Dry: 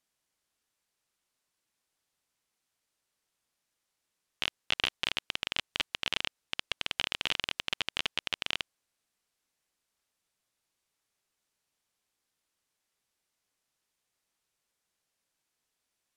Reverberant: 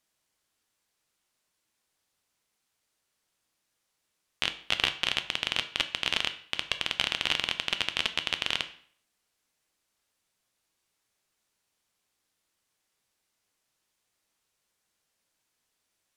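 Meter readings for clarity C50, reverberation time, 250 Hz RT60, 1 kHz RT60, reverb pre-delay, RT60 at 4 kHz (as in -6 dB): 13.0 dB, 0.55 s, 0.55 s, 0.55 s, 6 ms, 0.50 s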